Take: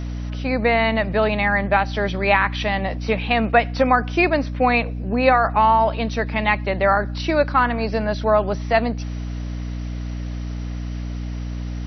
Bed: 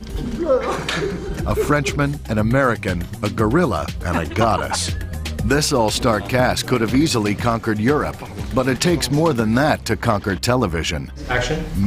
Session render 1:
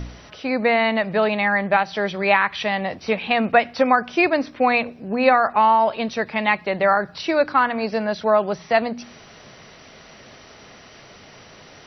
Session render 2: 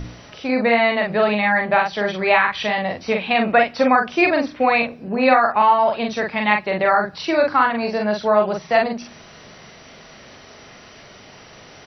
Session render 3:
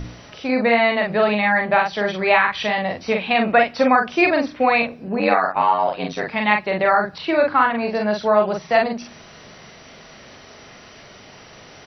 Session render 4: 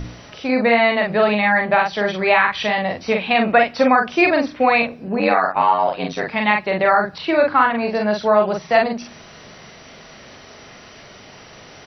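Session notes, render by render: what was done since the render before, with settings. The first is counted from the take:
de-hum 60 Hz, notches 5
doubling 43 ms -3 dB
5.19–6.28 s: ring modulator 47 Hz; 7.18–7.95 s: low-pass 3.9 kHz 24 dB/octave
trim +1.5 dB; peak limiter -3 dBFS, peak gain reduction 2.5 dB

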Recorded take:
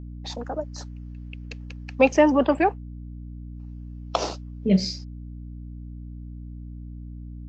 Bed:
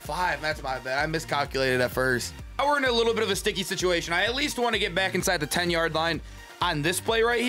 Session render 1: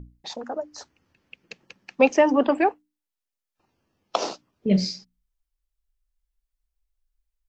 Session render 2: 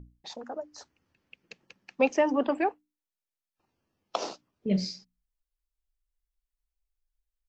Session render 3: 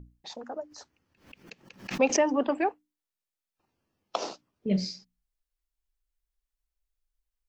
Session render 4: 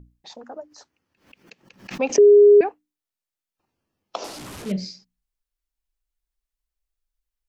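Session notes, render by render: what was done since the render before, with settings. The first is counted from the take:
hum notches 60/120/180/240/300 Hz
trim -6.5 dB
0.67–2.30 s: swell ahead of each attack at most 140 dB/s
0.68–1.63 s: bass shelf 130 Hz -8 dB; 2.18–2.61 s: bleep 411 Hz -7.5 dBFS; 4.24–4.72 s: one-bit delta coder 64 kbps, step -31.5 dBFS

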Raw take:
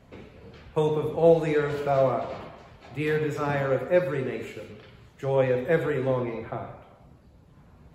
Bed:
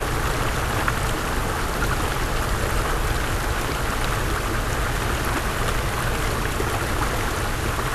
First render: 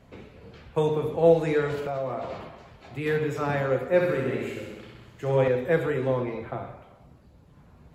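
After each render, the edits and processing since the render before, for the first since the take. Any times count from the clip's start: 1.75–3.06 s: compression 4:1, threshold -27 dBFS; 3.86–5.48 s: flutter echo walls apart 11.3 m, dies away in 0.97 s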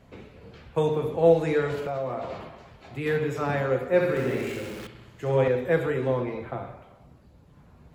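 4.16–4.87 s: jump at every zero crossing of -37.5 dBFS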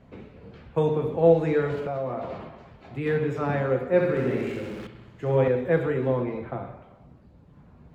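low-pass 2.5 kHz 6 dB/octave; peaking EQ 210 Hz +3.5 dB 1.3 oct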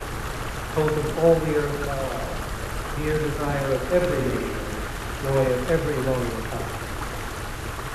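add bed -7.5 dB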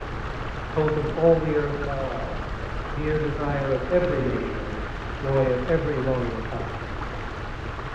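distance through air 190 m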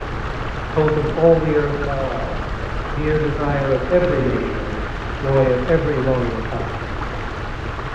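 trim +6 dB; peak limiter -3 dBFS, peak gain reduction 1.5 dB

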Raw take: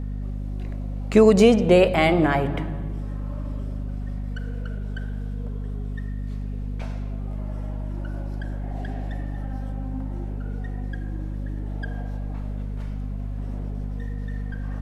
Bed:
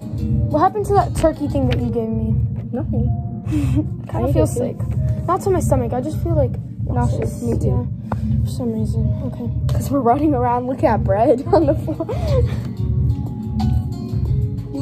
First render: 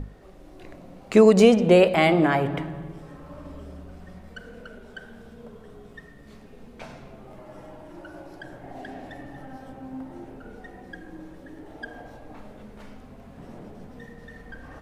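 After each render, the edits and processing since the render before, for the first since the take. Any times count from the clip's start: hum notches 50/100/150/200/250 Hz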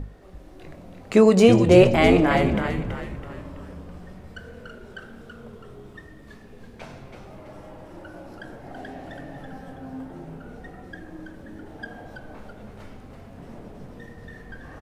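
doubling 22 ms -12.5 dB; frequency-shifting echo 329 ms, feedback 43%, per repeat -100 Hz, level -6 dB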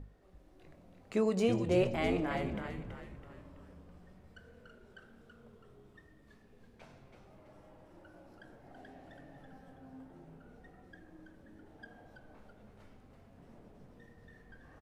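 trim -15.5 dB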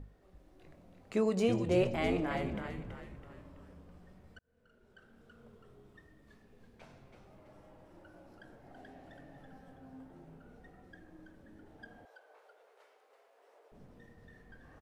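4.39–5.43 s: fade in; 12.05–13.72 s: elliptic high-pass 430 Hz, stop band 60 dB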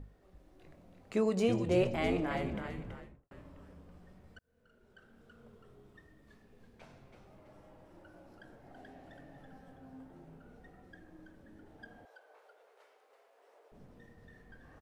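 2.91–3.31 s: studio fade out

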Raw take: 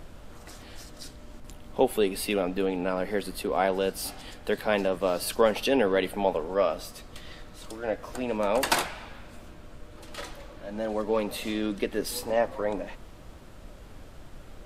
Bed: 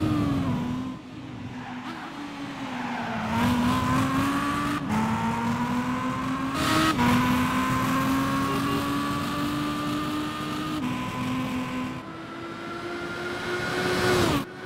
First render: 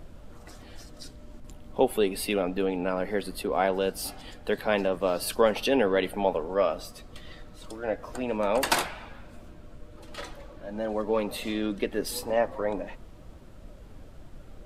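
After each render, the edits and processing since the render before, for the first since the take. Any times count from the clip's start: noise reduction 6 dB, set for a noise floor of -48 dBFS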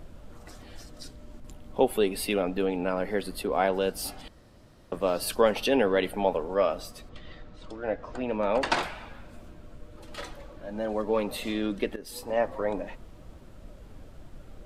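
4.28–4.92 s: room tone; 7.09–8.83 s: distance through air 120 m; 11.96–12.47 s: fade in, from -16.5 dB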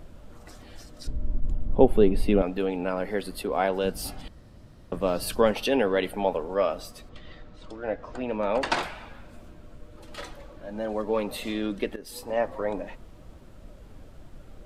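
1.07–2.42 s: tilt EQ -4 dB/octave; 3.84–5.52 s: tone controls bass +7 dB, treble -1 dB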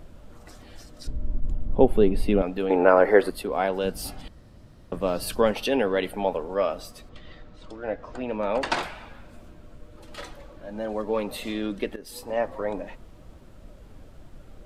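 2.70–3.30 s: high-order bell 780 Hz +13 dB 3 oct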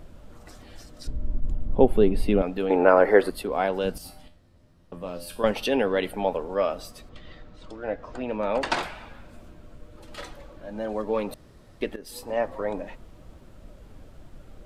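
3.98–5.44 s: feedback comb 86 Hz, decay 0.38 s, mix 80%; 11.34–11.81 s: room tone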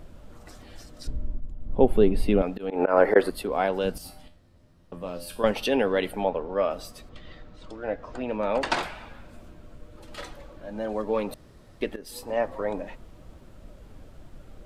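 1.15–1.90 s: dip -11 dB, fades 0.34 s; 2.48–3.16 s: slow attack 129 ms; 6.24–6.71 s: distance through air 160 m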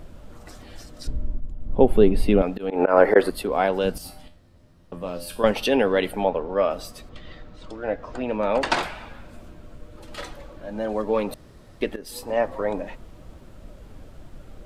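trim +3.5 dB; peak limiter -2 dBFS, peak gain reduction 1.5 dB

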